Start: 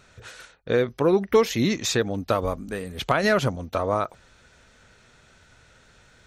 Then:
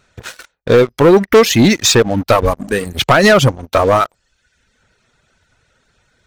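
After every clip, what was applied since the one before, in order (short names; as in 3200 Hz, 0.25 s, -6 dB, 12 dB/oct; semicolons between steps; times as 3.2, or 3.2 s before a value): reverb removal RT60 1 s; sample leveller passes 3; gain +4.5 dB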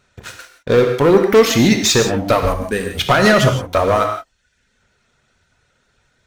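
non-linear reverb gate 0.19 s flat, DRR 4 dB; gain -4 dB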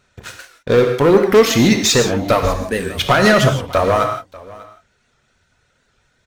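echo 0.594 s -21 dB; record warp 78 rpm, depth 100 cents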